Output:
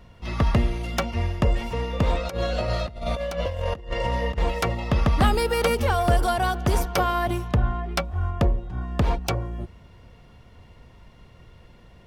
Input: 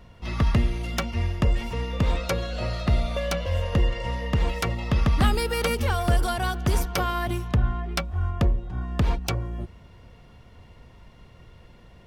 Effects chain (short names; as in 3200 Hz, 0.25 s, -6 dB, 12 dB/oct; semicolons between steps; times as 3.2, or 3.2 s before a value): dynamic EQ 660 Hz, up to +6 dB, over -40 dBFS, Q 0.79; 2.25–4.38 negative-ratio compressor -26 dBFS, ratio -0.5